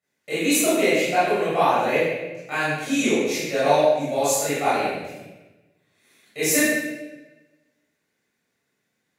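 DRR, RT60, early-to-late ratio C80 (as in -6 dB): -13.5 dB, 1.1 s, 0.0 dB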